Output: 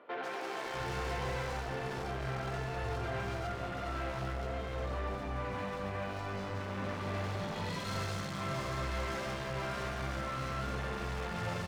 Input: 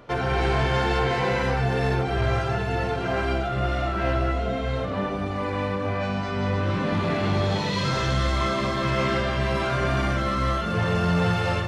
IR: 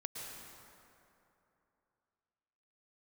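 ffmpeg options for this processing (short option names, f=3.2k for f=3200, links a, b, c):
-filter_complex "[0:a]volume=27.5dB,asoftclip=hard,volume=-27.5dB,acrossover=split=260|3400[a][b][c];[c]adelay=140[d];[a]adelay=650[e];[e][b][d]amix=inputs=3:normalize=0,volume=-7dB"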